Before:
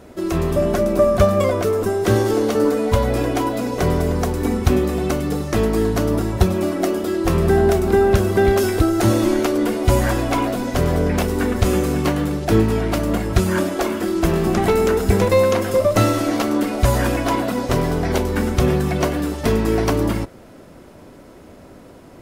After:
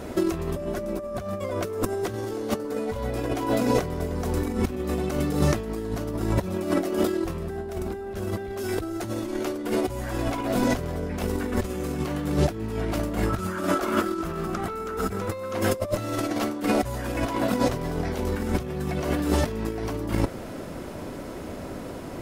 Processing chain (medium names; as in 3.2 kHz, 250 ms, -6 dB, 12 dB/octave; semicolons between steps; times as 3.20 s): 13.26–15.54 s: peaking EQ 1.3 kHz +14 dB 0.27 oct; peak limiter -10.5 dBFS, peak gain reduction 8.5 dB; compressor with a negative ratio -25 dBFS, ratio -0.5